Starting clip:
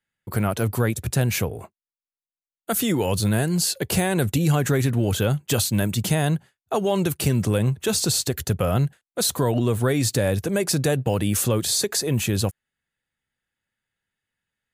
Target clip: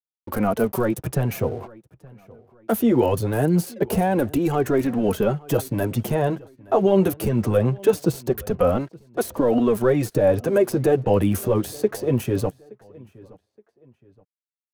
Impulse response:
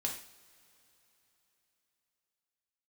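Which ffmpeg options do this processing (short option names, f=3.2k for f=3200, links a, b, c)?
-filter_complex "[0:a]apsyclip=13.5dB,adynamicequalizer=threshold=0.0631:dfrequency=130:dqfactor=4.9:tfrequency=130:tqfactor=4.9:attack=5:release=100:ratio=0.375:range=3:mode=boostabove:tftype=bell,acrossover=split=320|850[a][b][c];[a]acompressor=threshold=-7dB:ratio=4[d];[c]acompressor=threshold=-20dB:ratio=4[e];[d][b][e]amix=inputs=3:normalize=0,equalizer=f=125:t=o:w=1:g=-11,equalizer=f=2k:t=o:w=1:g=-4,equalizer=f=4k:t=o:w=1:g=-11,equalizer=f=8k:t=o:w=1:g=-8,flanger=delay=2.3:depth=8.7:regen=6:speed=0.22:shape=triangular,acrossover=split=6500[f][g];[f]aeval=exprs='sgn(val(0))*max(abs(val(0))-0.00501,0)':c=same[h];[g]acrusher=bits=4:mix=0:aa=0.5[i];[h][i]amix=inputs=2:normalize=0,bandreject=f=7.3k:w=18,asplit=2[j][k];[k]adelay=871,lowpass=f=3.3k:p=1,volume=-23dB,asplit=2[l][m];[m]adelay=871,lowpass=f=3.3k:p=1,volume=0.36[n];[j][l][n]amix=inputs=3:normalize=0,volume=-3dB"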